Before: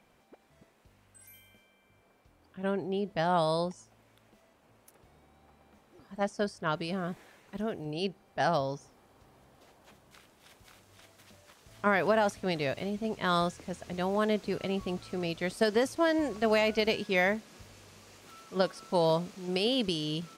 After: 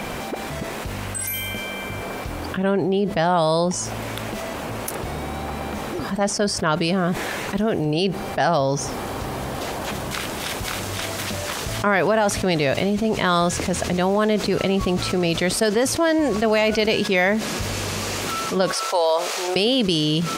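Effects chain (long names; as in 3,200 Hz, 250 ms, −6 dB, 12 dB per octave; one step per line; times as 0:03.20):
0:18.73–0:19.56: high-pass filter 500 Hz 24 dB per octave
envelope flattener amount 70%
level +5.5 dB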